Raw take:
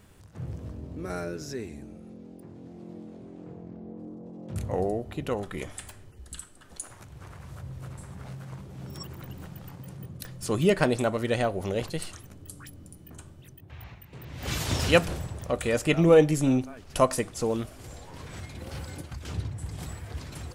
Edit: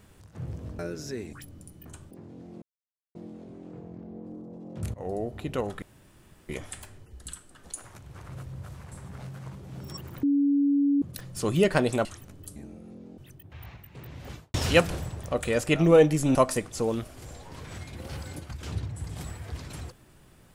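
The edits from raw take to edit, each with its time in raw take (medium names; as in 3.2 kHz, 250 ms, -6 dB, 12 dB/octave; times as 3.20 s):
0.79–1.21 s: delete
1.75–2.37 s: swap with 12.58–13.36 s
2.88 s: insert silence 0.53 s
4.67–5.02 s: fade in, from -17.5 dB
5.55 s: insert room tone 0.67 s
7.35–7.96 s: reverse
9.29–10.08 s: bleep 283 Hz -19.5 dBFS
11.11–12.07 s: delete
14.19–14.72 s: studio fade out
16.53–16.97 s: delete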